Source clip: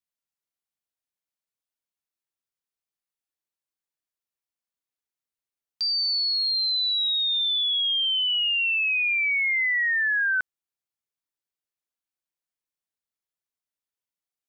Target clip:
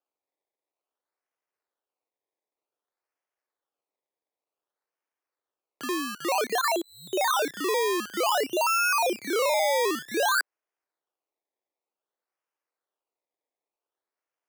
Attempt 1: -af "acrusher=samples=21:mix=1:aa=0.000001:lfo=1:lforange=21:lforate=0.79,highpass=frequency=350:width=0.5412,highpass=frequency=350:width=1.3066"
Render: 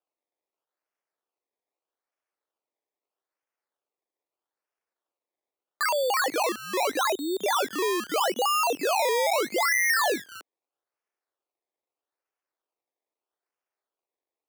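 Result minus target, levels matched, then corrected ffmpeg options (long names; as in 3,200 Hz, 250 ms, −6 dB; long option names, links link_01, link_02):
sample-and-hold swept by an LFO: distortion +12 dB
-af "acrusher=samples=21:mix=1:aa=0.000001:lfo=1:lforange=21:lforate=0.54,highpass=frequency=350:width=0.5412,highpass=frequency=350:width=1.3066"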